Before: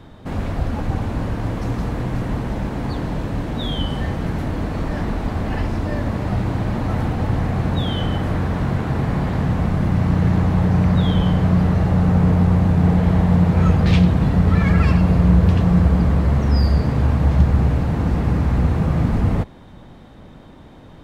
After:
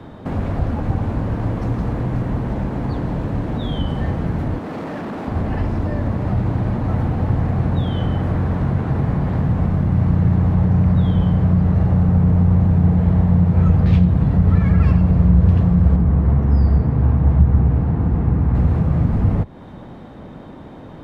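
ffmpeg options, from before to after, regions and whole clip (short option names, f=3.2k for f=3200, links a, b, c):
-filter_complex "[0:a]asettb=1/sr,asplit=3[a][b][c];[a]atrim=end=4.584[d];[b]atrim=start=4.58:end=5.28,asetpts=PTS-STARTPTS,afade=t=in:d=0.004:c=qsin,afade=t=out:st=0.696:d=0.004:c=qsin,highpass=200,asoftclip=type=hard:threshold=-29dB[e];[c]atrim=start=5.276[f];[d][e]acrossfade=d=0.004:c1=hsin:c2=qsin[g];[g][f]acrossfade=d=0.004:c1=qsin:c2=hsin,asettb=1/sr,asplit=3[h][i][j];[h]atrim=end=15.964[k];[i]atrim=start=15.96:end=18.55,asetpts=PTS-STARTPTS,afade=t=in:d=0.004:c=qsin,afade=t=out:st=2.586:d=0.004:c=qsin,lowpass=f=1.7k:p=1,bandreject=f=570:w=8.2[l];[j]atrim=start=18.546[m];[k][l]acrossfade=d=0.004:c1=hsin:c2=qsin[n];[n][m]acrossfade=d=0.004:c1=qsin:c2=hsin,highshelf=f=2.2k:g=-11.5,acrossover=split=140[o][p];[p]acompressor=threshold=-33dB:ratio=3[q];[o][q]amix=inputs=2:normalize=0,lowshelf=f=73:g=-11.5,volume=8dB"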